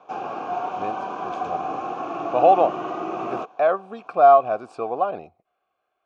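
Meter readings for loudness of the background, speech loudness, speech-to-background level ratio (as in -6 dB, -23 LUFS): -29.5 LUFS, -20.0 LUFS, 9.5 dB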